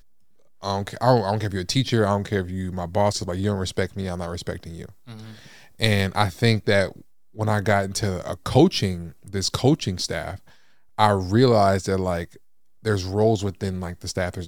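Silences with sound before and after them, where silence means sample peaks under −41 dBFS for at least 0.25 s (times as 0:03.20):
0:07.01–0:07.35
0:10.49–0:10.98
0:12.37–0:12.83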